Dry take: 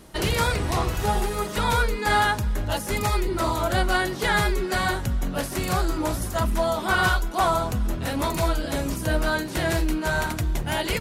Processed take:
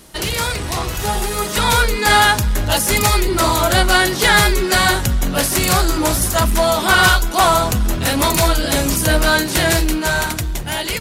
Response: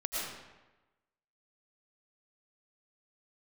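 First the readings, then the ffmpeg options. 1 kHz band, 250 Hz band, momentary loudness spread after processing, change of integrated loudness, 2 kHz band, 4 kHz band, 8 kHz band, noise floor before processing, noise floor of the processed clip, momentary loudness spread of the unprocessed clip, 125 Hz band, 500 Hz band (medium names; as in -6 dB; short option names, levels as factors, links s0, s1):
+8.0 dB, +7.0 dB, 9 LU, +9.0 dB, +9.5 dB, +12.5 dB, +14.5 dB, -32 dBFS, -24 dBFS, 5 LU, +6.5 dB, +7.0 dB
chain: -filter_complex "[0:a]asplit=2[s0][s1];[s1]asoftclip=type=tanh:threshold=0.0501,volume=0.631[s2];[s0][s2]amix=inputs=2:normalize=0,equalizer=f=3700:w=0.44:g=4,dynaudnorm=f=410:g=7:m=3.76,highshelf=f=5600:g=8.5,volume=0.75"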